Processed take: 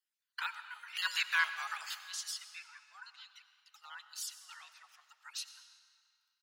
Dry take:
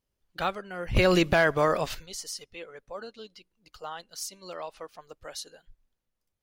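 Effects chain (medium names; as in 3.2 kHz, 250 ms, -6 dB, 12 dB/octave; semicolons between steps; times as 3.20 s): random holes in the spectrogram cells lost 24%; elliptic high-pass 1.4 kHz, stop band 80 dB; algorithmic reverb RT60 2.2 s, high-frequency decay 0.85×, pre-delay 55 ms, DRR 10.5 dB; harmony voices -7 st -10 dB; trim -2.5 dB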